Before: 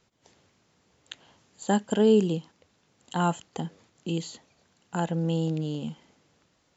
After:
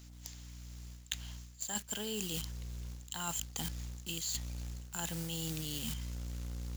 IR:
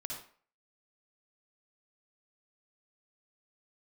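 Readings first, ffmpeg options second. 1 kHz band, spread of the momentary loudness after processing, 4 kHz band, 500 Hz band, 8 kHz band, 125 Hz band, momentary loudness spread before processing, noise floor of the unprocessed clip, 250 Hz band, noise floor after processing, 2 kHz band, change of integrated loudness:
−15.0 dB, 12 LU, +0.5 dB, −21.0 dB, can't be measured, −10.0 dB, 21 LU, −69 dBFS, −16.5 dB, −53 dBFS, −6.0 dB, −11.5 dB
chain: -filter_complex "[0:a]asplit=2[link_01][link_02];[link_02]acrusher=bits=6:mix=0:aa=0.000001,volume=-5.5dB[link_03];[link_01][link_03]amix=inputs=2:normalize=0,aderivative,aeval=exprs='val(0)+0.000447*(sin(2*PI*60*n/s)+sin(2*PI*2*60*n/s)/2+sin(2*PI*3*60*n/s)/3+sin(2*PI*4*60*n/s)/4+sin(2*PI*5*60*n/s)/5)':channel_layout=same,asubboost=boost=5.5:cutoff=220,areverse,acompressor=threshold=-49dB:ratio=16,areverse,acrusher=bits=3:mode=log:mix=0:aa=0.000001,volume=14.5dB"

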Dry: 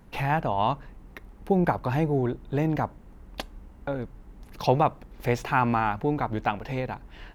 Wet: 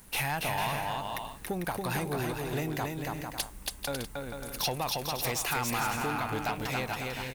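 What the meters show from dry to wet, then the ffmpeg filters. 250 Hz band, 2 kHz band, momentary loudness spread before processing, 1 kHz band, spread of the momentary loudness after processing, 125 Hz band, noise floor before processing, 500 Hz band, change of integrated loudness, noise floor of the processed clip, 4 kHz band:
−8.0 dB, 0.0 dB, 16 LU, −6.0 dB, 7 LU, −7.5 dB, −50 dBFS, −7.5 dB, −5.5 dB, −47 dBFS, +7.5 dB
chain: -filter_complex "[0:a]equalizer=frequency=9100:width=2.6:gain=7,acompressor=threshold=-24dB:ratio=6,crystalizer=i=10:c=0,asplit=2[link_01][link_02];[link_02]aecho=0:1:280|448|548.8|609.3|645.6:0.631|0.398|0.251|0.158|0.1[link_03];[link_01][link_03]amix=inputs=2:normalize=0,asoftclip=type=tanh:threshold=-18.5dB,volume=-5.5dB"

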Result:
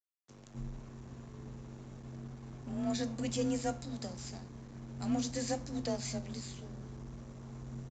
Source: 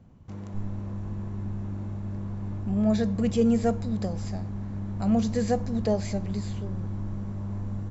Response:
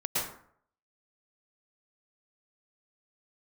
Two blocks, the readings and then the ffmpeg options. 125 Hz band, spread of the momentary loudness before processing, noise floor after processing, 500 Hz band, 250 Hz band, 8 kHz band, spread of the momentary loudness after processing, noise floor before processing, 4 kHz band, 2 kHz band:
−13.0 dB, 11 LU, −55 dBFS, −11.0 dB, −11.5 dB, can't be measured, 15 LU, −38 dBFS, 0.0 dB, −5.0 dB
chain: -af "crystalizer=i=6:c=0,aresample=16000,aeval=exprs='sgn(val(0))*max(abs(val(0))-0.0119,0)':channel_layout=same,aresample=44100,flanger=delay=8.5:depth=4:regen=82:speed=0.36:shape=sinusoidal,afreqshift=30,volume=-6dB"

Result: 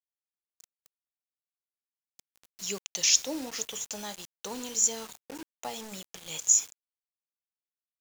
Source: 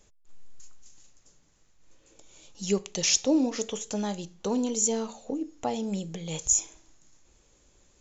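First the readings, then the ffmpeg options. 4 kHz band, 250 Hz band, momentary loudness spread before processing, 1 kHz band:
+1.5 dB, −13.5 dB, 11 LU, −5.5 dB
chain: -af "highpass=frequency=97:width=0.5412,highpass=frequency=97:width=1.3066,tiltshelf=frequency=740:gain=-9,acrusher=bits=5:mix=0:aa=0.000001,volume=-7dB"

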